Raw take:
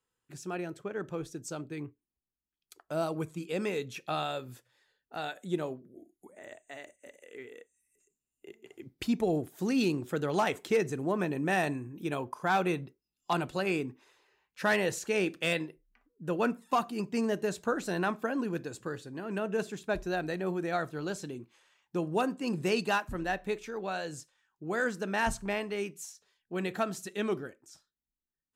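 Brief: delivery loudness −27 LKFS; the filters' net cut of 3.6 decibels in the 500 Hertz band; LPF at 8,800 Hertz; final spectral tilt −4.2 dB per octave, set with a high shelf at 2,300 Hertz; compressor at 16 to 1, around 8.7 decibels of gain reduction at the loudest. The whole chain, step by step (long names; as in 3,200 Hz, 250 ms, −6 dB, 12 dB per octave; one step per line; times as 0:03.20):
low-pass filter 8,800 Hz
parametric band 500 Hz −5 dB
high-shelf EQ 2,300 Hz +5.5 dB
downward compressor 16 to 1, threshold −32 dBFS
level +11.5 dB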